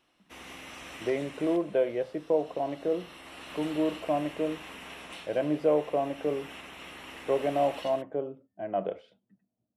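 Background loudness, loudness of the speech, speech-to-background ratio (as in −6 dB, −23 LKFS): −44.5 LKFS, −30.5 LKFS, 14.0 dB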